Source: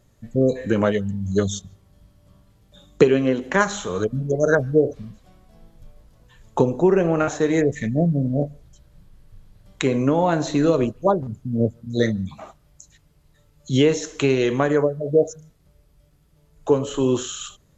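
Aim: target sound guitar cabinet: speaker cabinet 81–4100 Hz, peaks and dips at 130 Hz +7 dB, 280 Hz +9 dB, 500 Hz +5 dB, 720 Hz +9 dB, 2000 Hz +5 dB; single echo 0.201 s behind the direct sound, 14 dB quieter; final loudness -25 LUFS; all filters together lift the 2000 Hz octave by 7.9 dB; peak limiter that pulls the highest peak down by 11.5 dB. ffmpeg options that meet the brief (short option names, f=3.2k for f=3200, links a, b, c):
-af "equalizer=f=2k:t=o:g=7,alimiter=limit=-11.5dB:level=0:latency=1,highpass=81,equalizer=f=130:t=q:w=4:g=7,equalizer=f=280:t=q:w=4:g=9,equalizer=f=500:t=q:w=4:g=5,equalizer=f=720:t=q:w=4:g=9,equalizer=f=2k:t=q:w=4:g=5,lowpass=f=4.1k:w=0.5412,lowpass=f=4.1k:w=1.3066,aecho=1:1:201:0.2,volume=-6.5dB"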